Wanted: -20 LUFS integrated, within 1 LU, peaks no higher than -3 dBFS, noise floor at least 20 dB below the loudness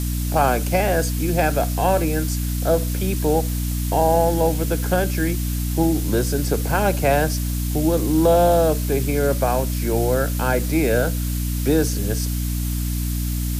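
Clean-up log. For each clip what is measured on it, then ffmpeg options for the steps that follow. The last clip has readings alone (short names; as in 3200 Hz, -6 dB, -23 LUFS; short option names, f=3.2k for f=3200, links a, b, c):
hum 60 Hz; harmonics up to 300 Hz; hum level -21 dBFS; noise floor -24 dBFS; noise floor target -41 dBFS; loudness -20.5 LUFS; peak -5.0 dBFS; loudness target -20.0 LUFS
-> -af "bandreject=f=60:t=h:w=4,bandreject=f=120:t=h:w=4,bandreject=f=180:t=h:w=4,bandreject=f=240:t=h:w=4,bandreject=f=300:t=h:w=4"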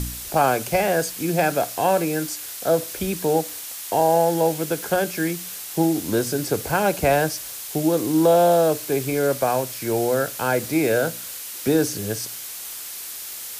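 hum none; noise floor -34 dBFS; noise floor target -42 dBFS
-> -af "afftdn=nr=8:nf=-34"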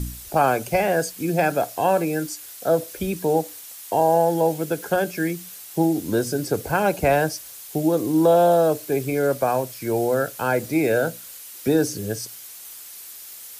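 noise floor -40 dBFS; noise floor target -42 dBFS
-> -af "afftdn=nr=6:nf=-40"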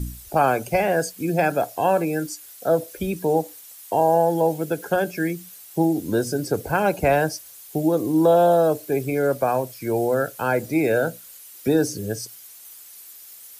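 noise floor -44 dBFS; loudness -22.0 LUFS; peak -7.0 dBFS; loudness target -20.0 LUFS
-> -af "volume=2dB"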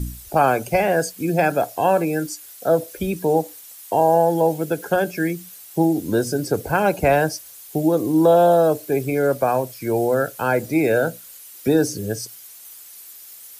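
loudness -20.0 LUFS; peak -5.0 dBFS; noise floor -42 dBFS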